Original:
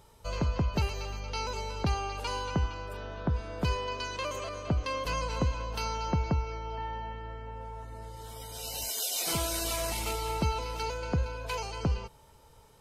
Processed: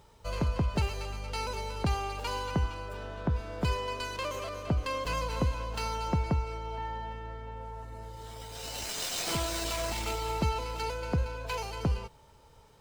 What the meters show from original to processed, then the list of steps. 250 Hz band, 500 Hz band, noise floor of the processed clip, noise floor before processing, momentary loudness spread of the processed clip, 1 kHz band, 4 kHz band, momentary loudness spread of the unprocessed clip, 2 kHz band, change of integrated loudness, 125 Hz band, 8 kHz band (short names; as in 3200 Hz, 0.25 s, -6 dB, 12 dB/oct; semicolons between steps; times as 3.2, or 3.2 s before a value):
0.0 dB, 0.0 dB, -58 dBFS, -57 dBFS, 11 LU, 0.0 dB, -0.5 dB, 12 LU, 0.0 dB, -0.5 dB, 0.0 dB, -3.0 dB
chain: running maximum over 3 samples